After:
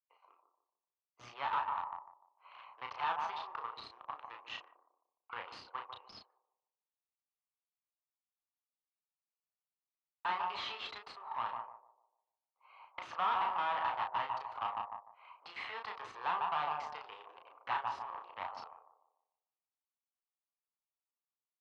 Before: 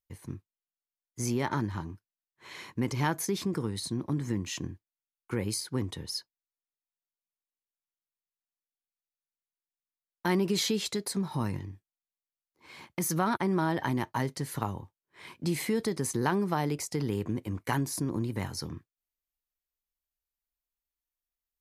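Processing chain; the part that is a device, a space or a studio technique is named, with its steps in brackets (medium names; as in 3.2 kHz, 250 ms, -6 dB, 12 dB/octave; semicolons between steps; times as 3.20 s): local Wiener filter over 25 samples; steep high-pass 690 Hz 36 dB/octave; analogue delay pedal into a guitar amplifier (bucket-brigade echo 148 ms, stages 1024, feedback 38%, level -6 dB; valve stage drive 38 dB, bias 0.4; cabinet simulation 100–3600 Hz, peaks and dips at 160 Hz -7 dB, 1.2 kHz +8 dB, 2.8 kHz +6 dB); dynamic bell 990 Hz, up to +6 dB, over -53 dBFS, Q 0.93; doubling 34 ms -5 dB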